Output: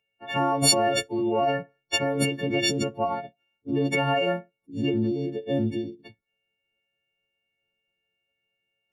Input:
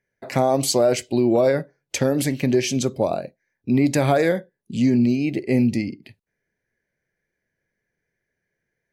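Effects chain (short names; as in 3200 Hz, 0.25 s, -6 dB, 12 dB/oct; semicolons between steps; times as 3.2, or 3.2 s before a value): frequency quantiser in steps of 4 st; formant shift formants +3 st; gain -6.5 dB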